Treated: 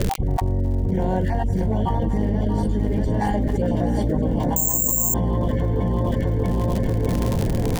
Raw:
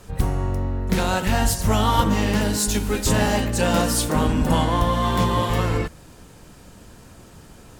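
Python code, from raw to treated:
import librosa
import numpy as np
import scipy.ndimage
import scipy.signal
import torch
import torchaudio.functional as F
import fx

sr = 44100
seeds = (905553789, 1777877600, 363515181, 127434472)

y = fx.spec_dropout(x, sr, seeds[0], share_pct=22)
y = np.convolve(y, np.full(34, 1.0 / 34))[:len(y)]
y = fx.dmg_crackle(y, sr, seeds[1], per_s=84.0, level_db=-40.0)
y = fx.echo_feedback(y, sr, ms=634, feedback_pct=31, wet_db=-6)
y = fx.resample_bad(y, sr, factor=6, down='filtered', up='zero_stuff', at=(4.56, 5.14))
y = fx.env_flatten(y, sr, amount_pct=100)
y = y * 10.0 ** (-11.0 / 20.0)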